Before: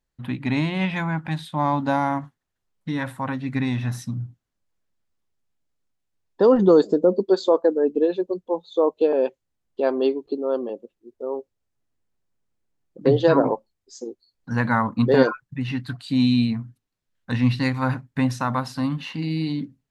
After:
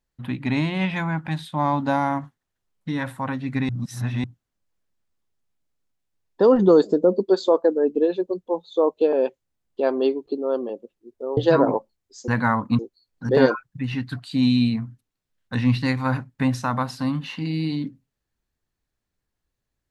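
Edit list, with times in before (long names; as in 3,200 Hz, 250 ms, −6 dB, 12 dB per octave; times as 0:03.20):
0:03.69–0:04.24: reverse
0:11.37–0:13.14: remove
0:14.05–0:14.55: move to 0:15.06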